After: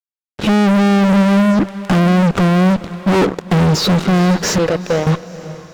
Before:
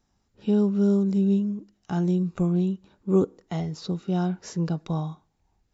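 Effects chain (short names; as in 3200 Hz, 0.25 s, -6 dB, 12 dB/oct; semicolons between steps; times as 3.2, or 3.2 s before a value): 4.58–5.07 vowel filter e; fuzz box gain 48 dB, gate -51 dBFS; LPF 3600 Hz 6 dB/oct; diffused feedback echo 0.476 s, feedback 41%, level -15.5 dB; gain +2.5 dB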